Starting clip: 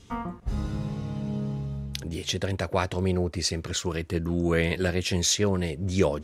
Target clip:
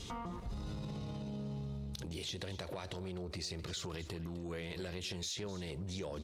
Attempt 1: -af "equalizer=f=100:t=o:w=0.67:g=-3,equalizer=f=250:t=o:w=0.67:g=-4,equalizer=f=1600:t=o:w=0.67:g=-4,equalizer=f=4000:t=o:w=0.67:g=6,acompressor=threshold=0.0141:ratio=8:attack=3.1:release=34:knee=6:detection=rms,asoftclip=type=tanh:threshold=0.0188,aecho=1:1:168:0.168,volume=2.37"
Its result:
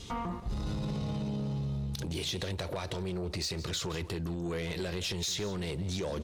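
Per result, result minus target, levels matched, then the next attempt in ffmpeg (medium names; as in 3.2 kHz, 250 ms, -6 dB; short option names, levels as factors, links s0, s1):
compression: peak gain reduction -8.5 dB; echo 88 ms early
-af "equalizer=f=100:t=o:w=0.67:g=-3,equalizer=f=250:t=o:w=0.67:g=-4,equalizer=f=1600:t=o:w=0.67:g=-4,equalizer=f=4000:t=o:w=0.67:g=6,acompressor=threshold=0.00447:ratio=8:attack=3.1:release=34:knee=6:detection=rms,asoftclip=type=tanh:threshold=0.0188,aecho=1:1:168:0.168,volume=2.37"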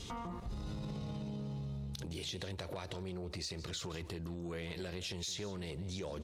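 echo 88 ms early
-af "equalizer=f=100:t=o:w=0.67:g=-3,equalizer=f=250:t=o:w=0.67:g=-4,equalizer=f=1600:t=o:w=0.67:g=-4,equalizer=f=4000:t=o:w=0.67:g=6,acompressor=threshold=0.00447:ratio=8:attack=3.1:release=34:knee=6:detection=rms,asoftclip=type=tanh:threshold=0.0188,aecho=1:1:256:0.168,volume=2.37"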